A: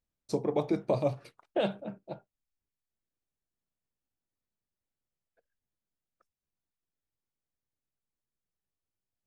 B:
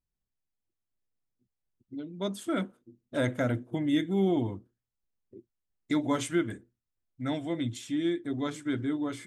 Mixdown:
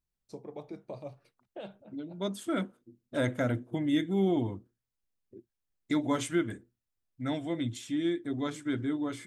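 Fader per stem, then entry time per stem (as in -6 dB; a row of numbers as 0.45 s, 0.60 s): -14.0 dB, -1.0 dB; 0.00 s, 0.00 s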